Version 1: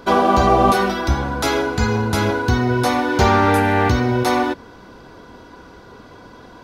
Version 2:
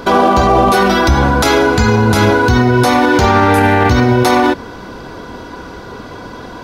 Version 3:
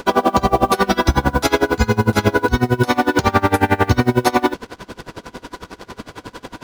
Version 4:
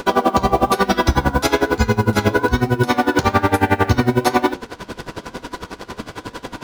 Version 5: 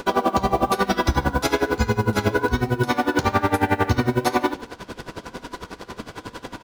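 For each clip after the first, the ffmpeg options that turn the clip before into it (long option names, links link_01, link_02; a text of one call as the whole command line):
ffmpeg -i in.wav -af "alimiter=level_in=13dB:limit=-1dB:release=50:level=0:latency=1,volume=-1dB" out.wav
ffmpeg -i in.wav -af "acrusher=bits=4:mix=0:aa=0.5,aeval=exprs='val(0)*pow(10,-25*(0.5-0.5*cos(2*PI*11*n/s))/20)':channel_layout=same" out.wav
ffmpeg -i in.wav -filter_complex "[0:a]asplit=2[link_01][link_02];[link_02]alimiter=limit=-11dB:level=0:latency=1:release=448,volume=3dB[link_03];[link_01][link_03]amix=inputs=2:normalize=0,flanger=delay=9.3:depth=4.2:regen=-83:speed=1.1:shape=triangular" out.wav
ffmpeg -i in.wav -af "aecho=1:1:75|150|225:0.158|0.0475|0.0143,volume=-4.5dB" out.wav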